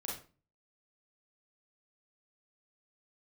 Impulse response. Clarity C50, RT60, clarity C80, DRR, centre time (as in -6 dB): 3.0 dB, 0.35 s, 10.0 dB, -4.5 dB, 42 ms